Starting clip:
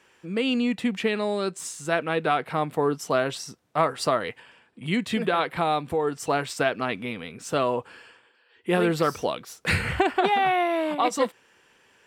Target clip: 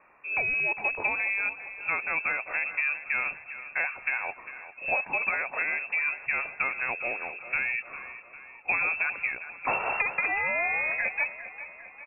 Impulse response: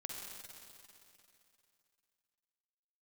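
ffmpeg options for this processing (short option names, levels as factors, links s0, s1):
-filter_complex "[0:a]acrossover=split=390|2200[s0][s1][s2];[s0]acompressor=threshold=0.0355:ratio=4[s3];[s1]acompressor=threshold=0.0251:ratio=4[s4];[s2]acompressor=threshold=0.0158:ratio=4[s5];[s3][s4][s5]amix=inputs=3:normalize=0,lowpass=f=2400:t=q:w=0.5098,lowpass=f=2400:t=q:w=0.6013,lowpass=f=2400:t=q:w=0.9,lowpass=f=2400:t=q:w=2.563,afreqshift=-2800,equalizer=f=700:t=o:w=0.82:g=7,asplit=2[s6][s7];[s7]aecho=0:1:401|802|1203|1604|2005:0.211|0.112|0.0594|0.0315|0.0167[s8];[s6][s8]amix=inputs=2:normalize=0"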